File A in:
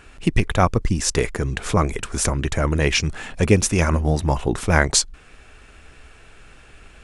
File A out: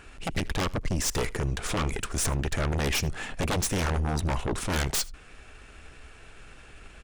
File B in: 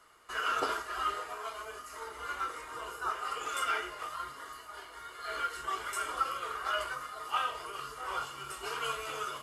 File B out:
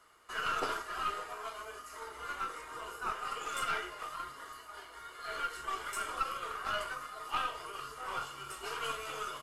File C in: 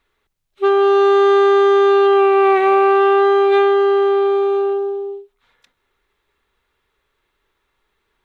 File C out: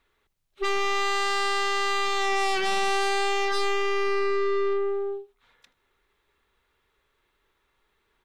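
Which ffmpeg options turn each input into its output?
-af "aeval=exprs='0.15*(abs(mod(val(0)/0.15+3,4)-2)-1)':c=same,aeval=exprs='(tanh(14.1*val(0)+0.5)-tanh(0.5))/14.1':c=same,aecho=1:1:79:0.0708"

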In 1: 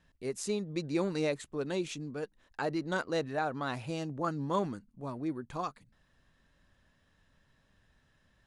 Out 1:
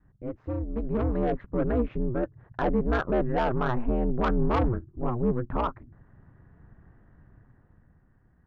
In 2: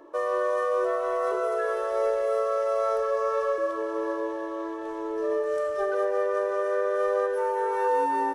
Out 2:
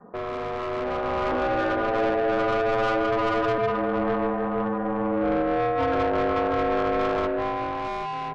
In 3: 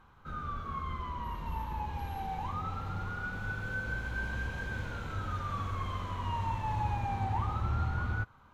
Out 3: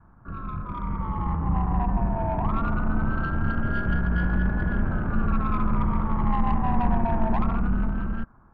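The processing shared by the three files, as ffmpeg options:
-af "lowpass=f=1.5k:w=0.5412,lowpass=f=1.5k:w=1.3066,adynamicequalizer=threshold=0.0158:dfrequency=440:dqfactor=1.5:tfrequency=440:tqfactor=1.5:attack=5:release=100:ratio=0.375:range=2:mode=cutabove:tftype=bell,asoftclip=type=tanh:threshold=-30.5dB,aeval=exprs='val(0)*sin(2*PI*120*n/s)':c=same,lowshelf=f=140:g=10,dynaudnorm=f=100:g=21:m=8dB,volume=4.5dB"

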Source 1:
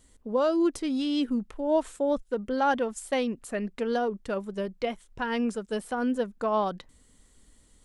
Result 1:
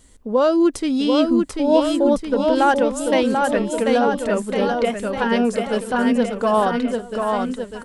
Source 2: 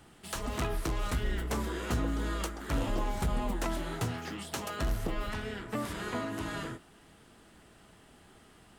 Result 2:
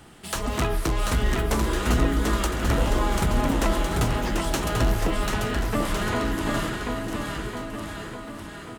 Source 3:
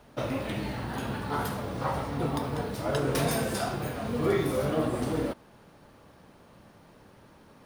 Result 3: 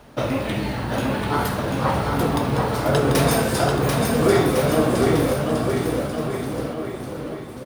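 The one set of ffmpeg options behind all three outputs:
-af "aecho=1:1:740|1406|2005|2545|3030:0.631|0.398|0.251|0.158|0.1,volume=8dB"

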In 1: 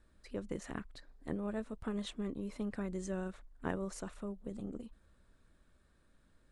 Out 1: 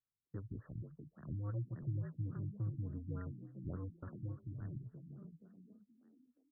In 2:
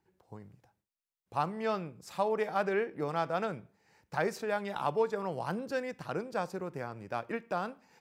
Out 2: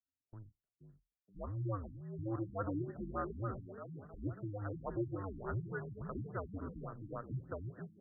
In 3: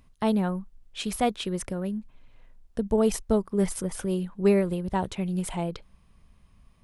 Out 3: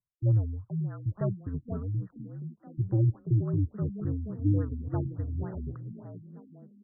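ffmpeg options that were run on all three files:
-filter_complex "[0:a]highpass=120,equalizer=f=220:t=q:w=4:g=10,equalizer=f=510:t=q:w=4:g=-4,equalizer=f=900:t=q:w=4:g=-9,equalizer=f=1.4k:t=q:w=4:g=6,lowpass=f=3.4k:w=0.5412,lowpass=f=3.4k:w=1.3066,afreqshift=-100,agate=range=-26dB:threshold=-49dB:ratio=16:detection=peak,asplit=6[a][b][c][d][e][f];[b]adelay=475,afreqshift=41,volume=-8dB[g];[c]adelay=950,afreqshift=82,volume=-15.5dB[h];[d]adelay=1425,afreqshift=123,volume=-23.1dB[i];[e]adelay=1900,afreqshift=164,volume=-30.6dB[j];[f]adelay=2375,afreqshift=205,volume=-38.1dB[k];[a][g][h][i][j][k]amix=inputs=6:normalize=0,afftfilt=real='re*lt(b*sr/1024,310*pow(2000/310,0.5+0.5*sin(2*PI*3.5*pts/sr)))':imag='im*lt(b*sr/1024,310*pow(2000/310,0.5+0.5*sin(2*PI*3.5*pts/sr)))':win_size=1024:overlap=0.75,volume=-7dB"

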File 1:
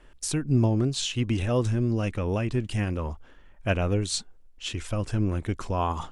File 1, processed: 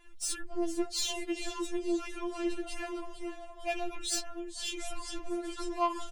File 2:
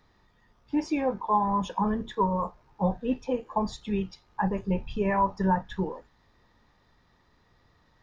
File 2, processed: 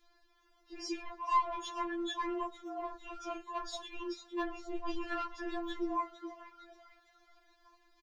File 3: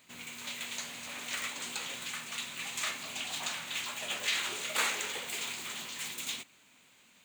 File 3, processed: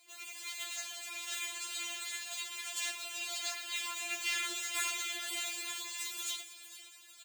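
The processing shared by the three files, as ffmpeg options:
-filter_complex "[0:a]highshelf=f=2.5k:g=6,asplit=6[a][b][c][d][e][f];[b]adelay=456,afreqshift=140,volume=-13dB[g];[c]adelay=912,afreqshift=280,volume=-18.8dB[h];[d]adelay=1368,afreqshift=420,volume=-24.7dB[i];[e]adelay=1824,afreqshift=560,volume=-30.5dB[j];[f]adelay=2280,afreqshift=700,volume=-36.4dB[k];[a][g][h][i][j][k]amix=inputs=6:normalize=0,asoftclip=type=tanh:threshold=-21.5dB,afftfilt=real='re*4*eq(mod(b,16),0)':imag='im*4*eq(mod(b,16),0)':win_size=2048:overlap=0.75,volume=-2.5dB"

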